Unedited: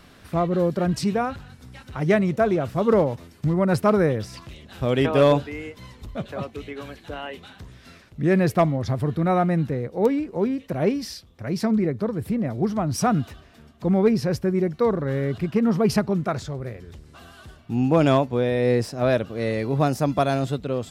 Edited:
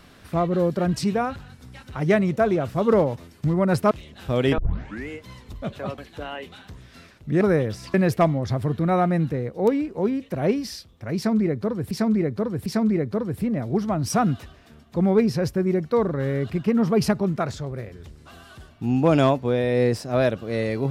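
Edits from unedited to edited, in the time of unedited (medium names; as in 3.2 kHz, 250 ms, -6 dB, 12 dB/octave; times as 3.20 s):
3.91–4.44 s: move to 8.32 s
5.11 s: tape start 0.50 s
6.51–6.89 s: delete
11.54–12.29 s: loop, 3 plays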